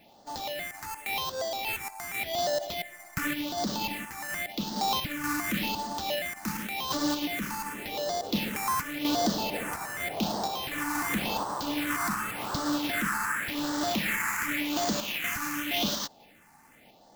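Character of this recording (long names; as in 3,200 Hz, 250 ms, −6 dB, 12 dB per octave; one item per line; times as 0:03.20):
sample-and-hold tremolo 4.2 Hz
aliases and images of a low sample rate 9,300 Hz, jitter 0%
phaser sweep stages 4, 0.89 Hz, lowest notch 540–2,400 Hz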